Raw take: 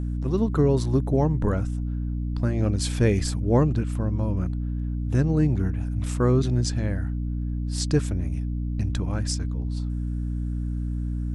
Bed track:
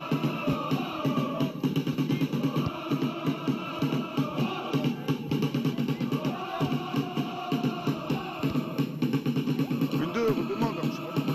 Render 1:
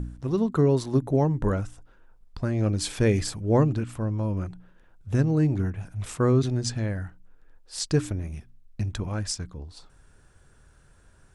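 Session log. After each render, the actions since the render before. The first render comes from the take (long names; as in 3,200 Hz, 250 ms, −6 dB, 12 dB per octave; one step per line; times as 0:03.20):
hum removal 60 Hz, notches 5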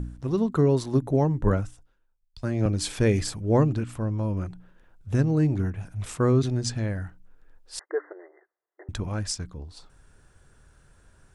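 0:01.41–0:02.66: multiband upward and downward expander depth 100%
0:07.79–0:08.89: linear-phase brick-wall band-pass 330–2,100 Hz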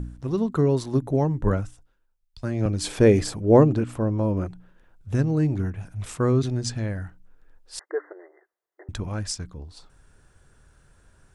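0:02.84–0:04.48: parametric band 460 Hz +8 dB 2.5 octaves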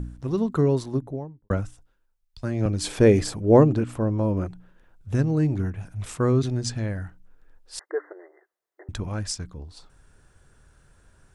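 0:00.64–0:01.50: fade out and dull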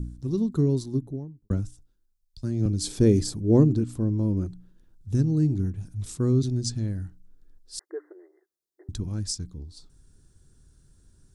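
flat-topped bell 1,200 Hz −14.5 dB 2.9 octaves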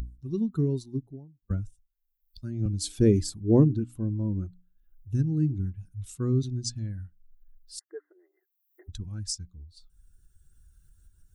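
spectral dynamics exaggerated over time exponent 1.5
upward compression, threshold −42 dBFS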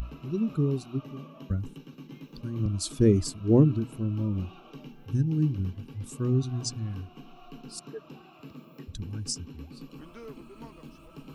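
mix in bed track −18 dB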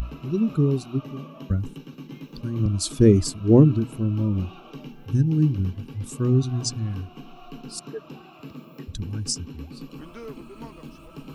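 level +5.5 dB
brickwall limiter −3 dBFS, peak gain reduction 1 dB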